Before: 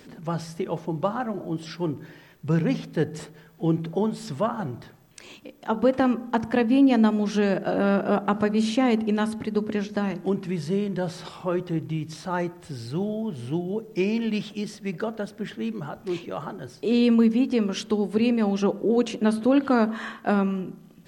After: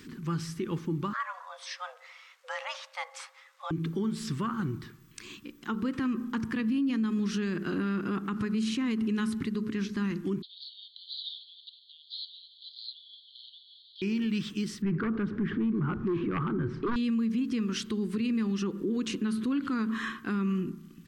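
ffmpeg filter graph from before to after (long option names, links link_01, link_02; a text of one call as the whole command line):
ffmpeg -i in.wav -filter_complex "[0:a]asettb=1/sr,asplit=3[link_01][link_02][link_03];[link_01]atrim=end=1.134[link_04];[link_02]atrim=start=1.13:end=3.71,asetpts=PTS-STARTPTS,afade=type=in:duration=0.004:curve=qsin,afade=type=out:start_time=2.576:duration=0.004:curve=qsin,highpass=180,lowpass=7900,afreqshift=370[link_05];[link_03]atrim=start=3.706[link_06];[link_04][link_05]acrossfade=duration=0.004:curve1=hsin:curve2=qsin[link_07];[link_07][link_06]acrossfade=duration=0.004:curve1=qsin:curve2=hsin,asettb=1/sr,asplit=3[link_08][link_09][link_10];[link_08]atrim=end=10.424[link_11];[link_09]atrim=start=10.42:end=14.02,asetpts=PTS-STARTPTS,afade=type=in:duration=0.004:curve=qsin,afade=type=out:start_time=3.596:duration=0.004:curve=qsin,aeval=exprs='val(0)+0.5*0.0133*sgn(val(0))':channel_layout=same,asuperpass=centerf=3800:order=12:qfactor=2.9,acontrast=30[link_12];[link_10]atrim=start=14.016[link_13];[link_11][link_12]acrossfade=duration=0.004:curve1=hsin:curve2=qsin[link_14];[link_14][link_13]acrossfade=duration=0.004:curve1=qsin:curve2=hsin,asettb=1/sr,asplit=3[link_15][link_16][link_17];[link_15]atrim=end=14.824[link_18];[link_16]atrim=start=14.82:end=16.96,asetpts=PTS-STARTPTS,afade=type=in:duration=0.004:curve=qsin,afade=type=out:start_time=2.136:duration=0.004:curve=qsin,lowpass=1300,aeval=exprs='0.224*sin(PI/2*3.16*val(0)/0.224)':channel_layout=same[link_19];[link_17]atrim=start=16.956[link_20];[link_18][link_19]acrossfade=duration=0.004:curve1=hsin:curve2=qsin[link_21];[link_21][link_20]acrossfade=duration=0.004:curve1=qsin:curve2=hsin,firequalizer=gain_entry='entry(350,0);entry(630,-27);entry(1100,-1)':delay=0.05:min_phase=1,alimiter=limit=-24dB:level=0:latency=1:release=96,volume=1dB" out.wav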